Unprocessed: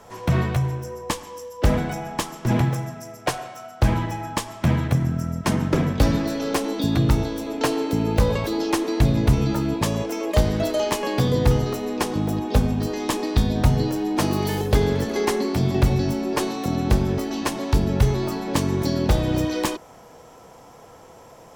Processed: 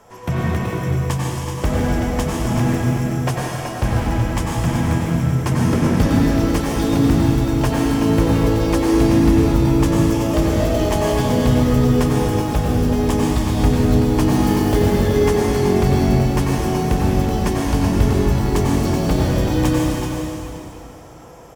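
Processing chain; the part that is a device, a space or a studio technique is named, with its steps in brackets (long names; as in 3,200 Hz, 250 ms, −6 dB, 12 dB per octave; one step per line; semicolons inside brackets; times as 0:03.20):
cave (single-tap delay 378 ms −8.5 dB; convolution reverb RT60 2.9 s, pre-delay 85 ms, DRR −4 dB)
parametric band 4,100 Hz −6 dB 0.29 octaves
level −2 dB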